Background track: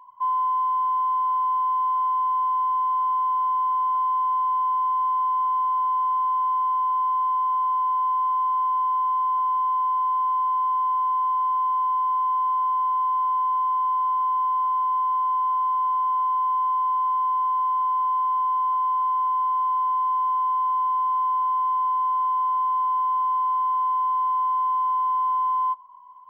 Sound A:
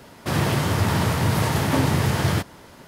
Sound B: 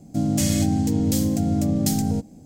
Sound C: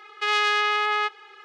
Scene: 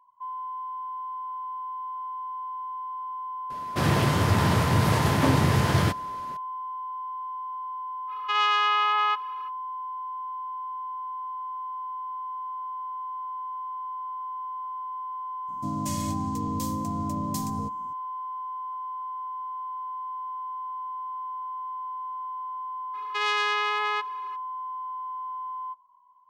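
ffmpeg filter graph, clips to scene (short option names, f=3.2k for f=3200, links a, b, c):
-filter_complex "[3:a]asplit=2[a][b];[0:a]volume=-12dB[c];[1:a]highshelf=f=8.1k:g=-5.5[d];[a]highpass=410,equalizer=f=890:t=q:w=4:g=8,equalizer=f=1.3k:t=q:w=4:g=10,equalizer=f=2.9k:t=q:w=4:g=8,lowpass=f=7.6k:w=0.5412,lowpass=f=7.6k:w=1.3066[e];[d]atrim=end=2.87,asetpts=PTS-STARTPTS,volume=-1dB,afade=t=in:d=0.004:c=hsin,afade=t=out:st=2.866:d=0.004:c=hsin,adelay=3500[f];[e]atrim=end=1.44,asetpts=PTS-STARTPTS,volume=-8dB,afade=t=in:d=0.05,afade=t=out:st=1.39:d=0.05,adelay=8070[g];[2:a]atrim=end=2.45,asetpts=PTS-STARTPTS,volume=-10dB,afade=t=in:d=0.004:c=hsin,afade=t=out:st=2.446:d=0.004:c=hsin,adelay=15480[h];[b]atrim=end=1.44,asetpts=PTS-STARTPTS,volume=-4dB,afade=t=in:d=0.02,afade=t=out:st=1.42:d=0.02,adelay=22930[i];[c][f][g][h][i]amix=inputs=5:normalize=0"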